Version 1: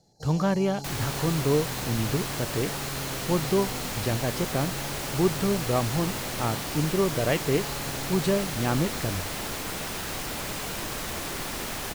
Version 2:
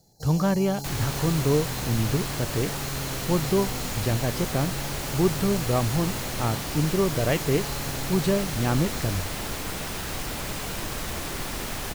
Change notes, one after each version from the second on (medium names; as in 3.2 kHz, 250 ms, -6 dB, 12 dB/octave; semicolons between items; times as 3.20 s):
first sound: remove distance through air 66 m; master: add bass shelf 120 Hz +7 dB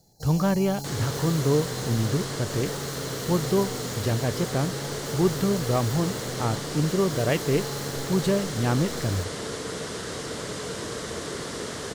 second sound: add cabinet simulation 110–9200 Hz, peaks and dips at 450 Hz +10 dB, 810 Hz -7 dB, 2.5 kHz -9 dB